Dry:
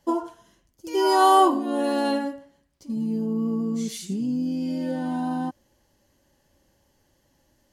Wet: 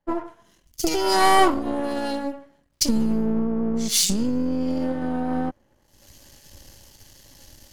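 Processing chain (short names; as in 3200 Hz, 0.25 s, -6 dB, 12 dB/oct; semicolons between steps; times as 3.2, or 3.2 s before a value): half-wave gain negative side -12 dB; recorder AGC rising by 45 dB/s; dynamic EQ 4900 Hz, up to +4 dB, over -50 dBFS, Q 2.7; three-band expander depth 100%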